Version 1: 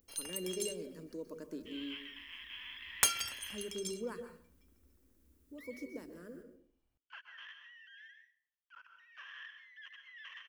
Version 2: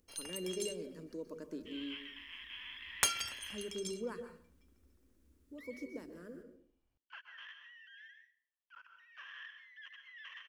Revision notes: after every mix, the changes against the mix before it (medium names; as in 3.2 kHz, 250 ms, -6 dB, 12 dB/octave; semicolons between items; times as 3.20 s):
master: add treble shelf 12 kHz -11.5 dB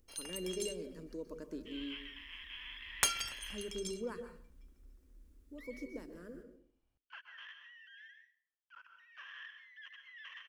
speech: remove high-pass 65 Hz 24 dB/octave